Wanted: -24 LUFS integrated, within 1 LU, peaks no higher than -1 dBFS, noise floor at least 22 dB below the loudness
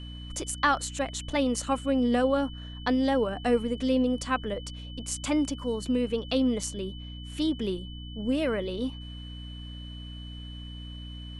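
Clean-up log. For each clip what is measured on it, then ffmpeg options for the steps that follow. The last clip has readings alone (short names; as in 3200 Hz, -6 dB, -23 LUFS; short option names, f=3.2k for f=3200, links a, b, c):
hum 60 Hz; harmonics up to 300 Hz; hum level -38 dBFS; steady tone 3000 Hz; tone level -46 dBFS; loudness -28.5 LUFS; peak -12.5 dBFS; loudness target -24.0 LUFS
-> -af "bandreject=f=60:t=h:w=6,bandreject=f=120:t=h:w=6,bandreject=f=180:t=h:w=6,bandreject=f=240:t=h:w=6,bandreject=f=300:t=h:w=6"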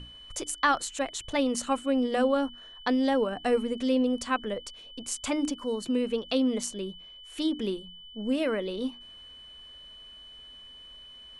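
hum none; steady tone 3000 Hz; tone level -46 dBFS
-> -af "bandreject=f=3k:w=30"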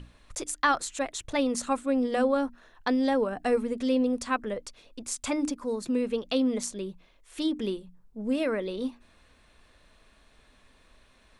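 steady tone none; loudness -29.0 LUFS; peak -12.5 dBFS; loudness target -24.0 LUFS
-> -af "volume=5dB"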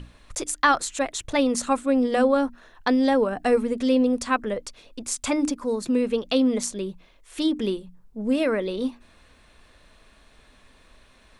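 loudness -24.0 LUFS; peak -7.5 dBFS; noise floor -56 dBFS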